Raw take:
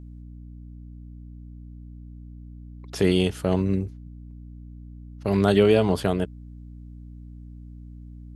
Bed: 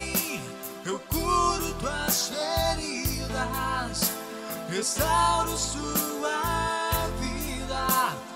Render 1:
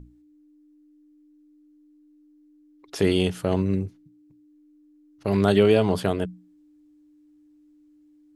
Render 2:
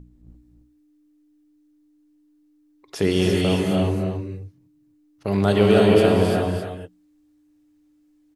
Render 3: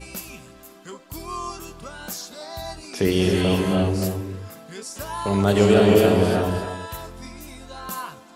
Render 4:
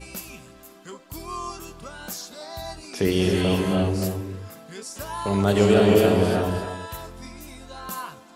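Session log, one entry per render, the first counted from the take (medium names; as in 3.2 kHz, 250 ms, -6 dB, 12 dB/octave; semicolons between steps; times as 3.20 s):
hum notches 60/120/180/240 Hz
on a send: delay 269 ms -7 dB; on the sum: gated-style reverb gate 370 ms rising, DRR -1.5 dB
add bed -8 dB
trim -1.5 dB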